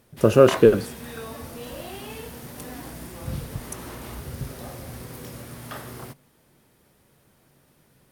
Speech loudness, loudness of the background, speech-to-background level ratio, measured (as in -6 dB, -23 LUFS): -17.5 LUFS, -36.0 LUFS, 18.5 dB